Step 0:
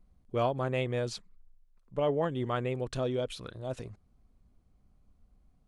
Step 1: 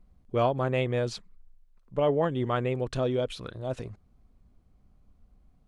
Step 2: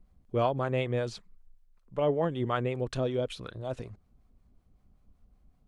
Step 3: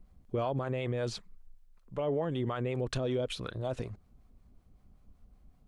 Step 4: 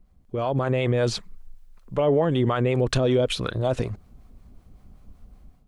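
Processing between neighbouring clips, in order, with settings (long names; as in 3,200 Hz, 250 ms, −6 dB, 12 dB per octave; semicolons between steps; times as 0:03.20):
high-shelf EQ 6,200 Hz −7 dB; level +4 dB
two-band tremolo in antiphase 5.3 Hz, depth 50%, crossover 590 Hz
brickwall limiter −26.5 dBFS, peak gain reduction 11.5 dB; level +3 dB
automatic gain control gain up to 11 dB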